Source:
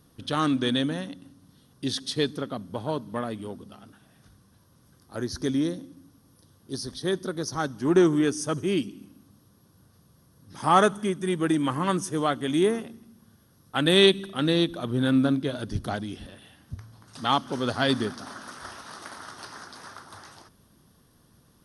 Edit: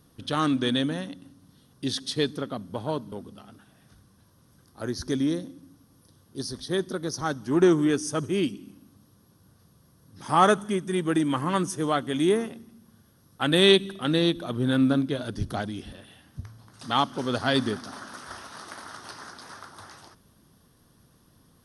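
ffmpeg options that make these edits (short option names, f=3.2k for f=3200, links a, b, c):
-filter_complex "[0:a]asplit=2[a][b];[a]atrim=end=3.122[c];[b]atrim=start=3.458[d];[c][d]acrossfade=d=0.004:c1=hsin:c2=hsin"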